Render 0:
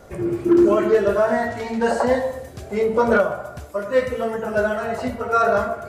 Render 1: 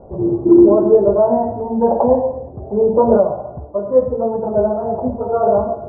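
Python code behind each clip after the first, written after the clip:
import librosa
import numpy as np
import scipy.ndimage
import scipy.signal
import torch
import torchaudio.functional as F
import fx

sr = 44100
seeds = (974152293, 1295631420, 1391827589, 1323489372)

y = scipy.signal.sosfilt(scipy.signal.ellip(4, 1.0, 70, 920.0, 'lowpass', fs=sr, output='sos'), x)
y = F.gain(torch.from_numpy(y), 6.0).numpy()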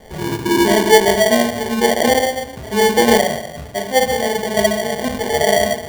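y = fx.room_shoebox(x, sr, seeds[0], volume_m3=750.0, walls='furnished', distance_m=1.6)
y = fx.sample_hold(y, sr, seeds[1], rate_hz=1300.0, jitter_pct=0)
y = F.gain(torch.from_numpy(y), -3.0).numpy()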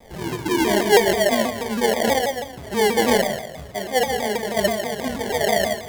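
y = fx.rev_schroeder(x, sr, rt60_s=0.41, comb_ms=32, drr_db=9.5)
y = fx.vibrato_shape(y, sr, shape='saw_down', rate_hz=6.2, depth_cents=160.0)
y = F.gain(torch.from_numpy(y), -5.5).numpy()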